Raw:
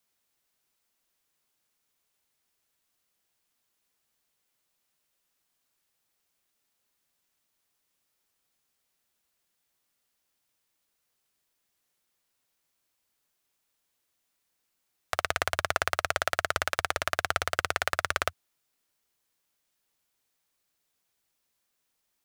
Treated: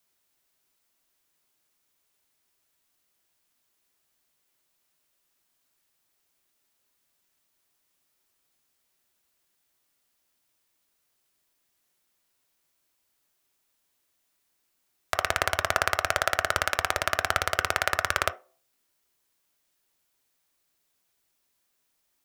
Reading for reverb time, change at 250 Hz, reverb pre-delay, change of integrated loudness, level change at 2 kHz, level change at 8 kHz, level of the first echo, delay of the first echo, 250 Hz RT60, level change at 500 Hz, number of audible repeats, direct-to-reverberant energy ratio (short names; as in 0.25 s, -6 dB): 0.40 s, +3.0 dB, 3 ms, +3.0 dB, +3.0 dB, +3.0 dB, none, none, 0.35 s, +3.0 dB, none, 11.0 dB